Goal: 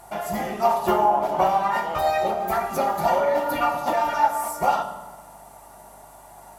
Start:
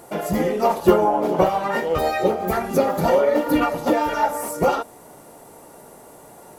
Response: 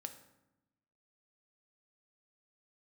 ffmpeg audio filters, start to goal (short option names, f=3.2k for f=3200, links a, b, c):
-filter_complex "[0:a]lowshelf=f=590:t=q:w=3:g=-6.5,aeval=exprs='val(0)+0.002*(sin(2*PI*50*n/s)+sin(2*PI*2*50*n/s)/2+sin(2*PI*3*50*n/s)/3+sin(2*PI*4*50*n/s)/4+sin(2*PI*5*50*n/s)/5)':c=same[a];[1:a]atrim=start_sample=2205,asetrate=32193,aresample=44100[b];[a][b]afir=irnorm=-1:irlink=0"